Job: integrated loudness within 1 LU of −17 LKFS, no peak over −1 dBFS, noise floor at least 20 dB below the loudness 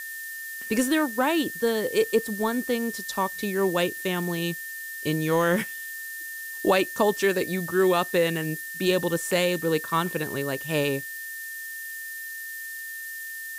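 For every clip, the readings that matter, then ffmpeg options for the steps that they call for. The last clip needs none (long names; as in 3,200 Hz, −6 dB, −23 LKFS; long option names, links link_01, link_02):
interfering tone 1,800 Hz; level of the tone −35 dBFS; background noise floor −37 dBFS; target noise floor −47 dBFS; integrated loudness −26.5 LKFS; sample peak −10.0 dBFS; target loudness −17.0 LKFS
→ -af "bandreject=frequency=1800:width=30"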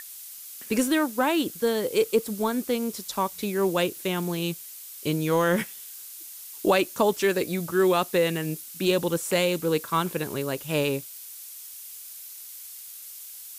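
interfering tone none found; background noise floor −42 dBFS; target noise floor −46 dBFS
→ -af "afftdn=noise_reduction=6:noise_floor=-42"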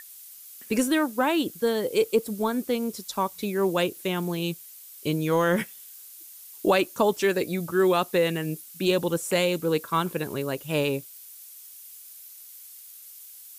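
background noise floor −46 dBFS; integrated loudness −26.0 LKFS; sample peak −10.5 dBFS; target loudness −17.0 LKFS
→ -af "volume=9dB"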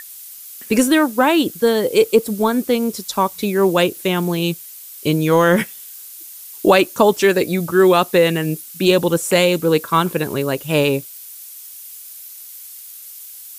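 integrated loudness −17.0 LKFS; sample peak −1.5 dBFS; background noise floor −37 dBFS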